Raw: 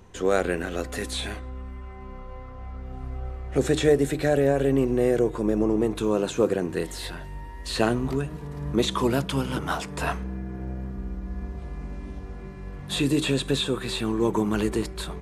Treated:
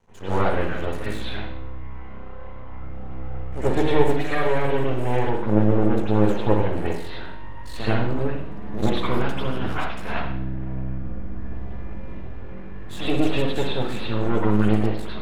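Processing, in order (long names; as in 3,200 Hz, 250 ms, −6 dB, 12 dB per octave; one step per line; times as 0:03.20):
0:04.07–0:05.30: tilt shelving filter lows −5.5 dB, about 750 Hz
half-wave rectification
convolution reverb, pre-delay 74 ms, DRR −13.5 dB
level −8.5 dB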